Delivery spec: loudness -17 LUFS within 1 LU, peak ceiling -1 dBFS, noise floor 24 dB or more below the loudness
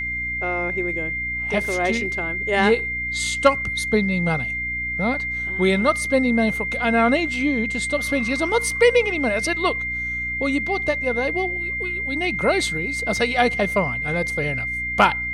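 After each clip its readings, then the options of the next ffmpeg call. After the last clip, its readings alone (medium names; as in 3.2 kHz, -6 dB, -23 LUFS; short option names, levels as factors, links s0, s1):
hum 60 Hz; highest harmonic 300 Hz; hum level -34 dBFS; steady tone 2.1 kHz; tone level -24 dBFS; loudness -21.0 LUFS; peak level -3.0 dBFS; loudness target -17.0 LUFS
-> -af "bandreject=f=60:t=h:w=6,bandreject=f=120:t=h:w=6,bandreject=f=180:t=h:w=6,bandreject=f=240:t=h:w=6,bandreject=f=300:t=h:w=6"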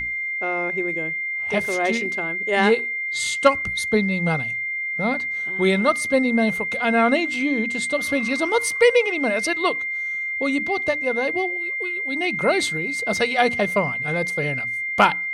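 hum not found; steady tone 2.1 kHz; tone level -24 dBFS
-> -af "bandreject=f=2100:w=30"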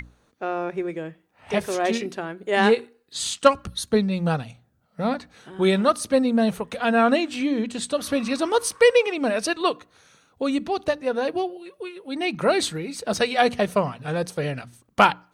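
steady tone not found; loudness -23.5 LUFS; peak level -3.5 dBFS; loudness target -17.0 LUFS
-> -af "volume=2.11,alimiter=limit=0.891:level=0:latency=1"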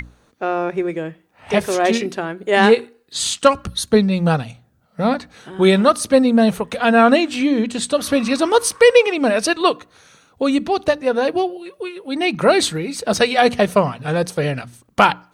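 loudness -17.5 LUFS; peak level -1.0 dBFS; noise floor -58 dBFS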